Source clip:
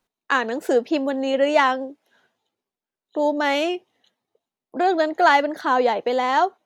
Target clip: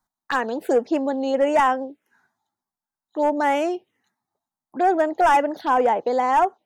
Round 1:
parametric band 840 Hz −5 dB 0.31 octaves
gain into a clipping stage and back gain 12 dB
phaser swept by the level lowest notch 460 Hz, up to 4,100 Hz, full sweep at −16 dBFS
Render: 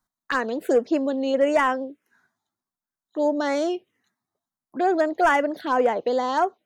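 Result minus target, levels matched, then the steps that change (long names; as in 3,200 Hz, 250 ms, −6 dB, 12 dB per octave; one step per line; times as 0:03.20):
1,000 Hz band −3.0 dB
change: parametric band 840 Hz +5 dB 0.31 octaves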